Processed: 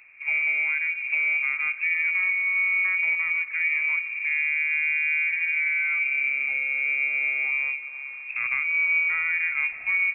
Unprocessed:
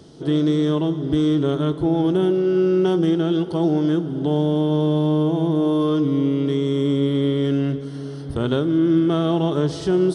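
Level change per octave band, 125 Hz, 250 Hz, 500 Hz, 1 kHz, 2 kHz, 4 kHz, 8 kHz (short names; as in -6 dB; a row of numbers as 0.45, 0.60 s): under -40 dB, under -40 dB, under -35 dB, -12.5 dB, +21.5 dB, under -15 dB, n/a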